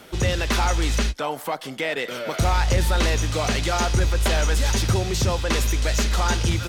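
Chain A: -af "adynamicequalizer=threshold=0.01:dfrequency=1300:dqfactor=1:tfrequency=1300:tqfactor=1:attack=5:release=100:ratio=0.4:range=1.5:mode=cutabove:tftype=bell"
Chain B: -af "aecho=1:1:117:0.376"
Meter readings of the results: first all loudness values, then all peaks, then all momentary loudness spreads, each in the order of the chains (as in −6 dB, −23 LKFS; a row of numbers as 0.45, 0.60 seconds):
−23.0, −23.0 LKFS; −12.0, −10.0 dBFS; 6, 5 LU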